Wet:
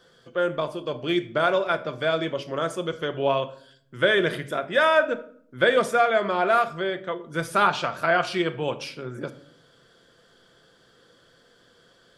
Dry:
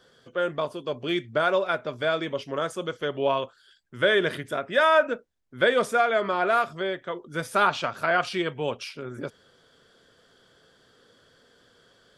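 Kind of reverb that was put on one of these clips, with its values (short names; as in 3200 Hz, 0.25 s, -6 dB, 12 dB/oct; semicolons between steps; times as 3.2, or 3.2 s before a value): shoebox room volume 1000 m³, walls furnished, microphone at 0.78 m; gain +1 dB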